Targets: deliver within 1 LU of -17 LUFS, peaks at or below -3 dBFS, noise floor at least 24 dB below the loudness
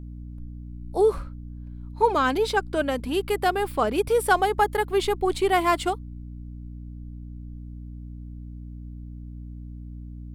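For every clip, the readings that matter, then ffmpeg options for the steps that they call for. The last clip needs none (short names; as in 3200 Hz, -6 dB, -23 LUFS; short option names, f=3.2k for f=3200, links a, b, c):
hum 60 Hz; harmonics up to 300 Hz; hum level -35 dBFS; loudness -23.5 LUFS; peak -7.5 dBFS; loudness target -17.0 LUFS
-> -af "bandreject=f=60:t=h:w=6,bandreject=f=120:t=h:w=6,bandreject=f=180:t=h:w=6,bandreject=f=240:t=h:w=6,bandreject=f=300:t=h:w=6"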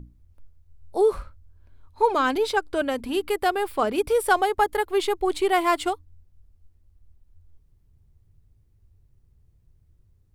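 hum none; loudness -24.0 LUFS; peak -7.5 dBFS; loudness target -17.0 LUFS
-> -af "volume=7dB,alimiter=limit=-3dB:level=0:latency=1"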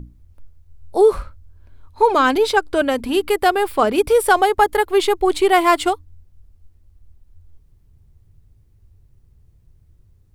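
loudness -17.0 LUFS; peak -3.0 dBFS; noise floor -55 dBFS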